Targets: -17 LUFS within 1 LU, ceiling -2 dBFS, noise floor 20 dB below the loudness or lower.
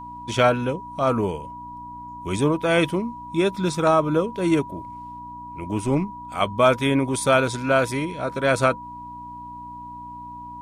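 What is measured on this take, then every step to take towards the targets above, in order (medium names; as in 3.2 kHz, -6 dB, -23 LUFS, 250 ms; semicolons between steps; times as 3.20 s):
hum 60 Hz; highest harmonic 300 Hz; hum level -40 dBFS; steady tone 970 Hz; tone level -35 dBFS; loudness -22.0 LUFS; peak level -5.5 dBFS; loudness target -17.0 LUFS
-> de-hum 60 Hz, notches 5; band-stop 970 Hz, Q 30; trim +5 dB; peak limiter -2 dBFS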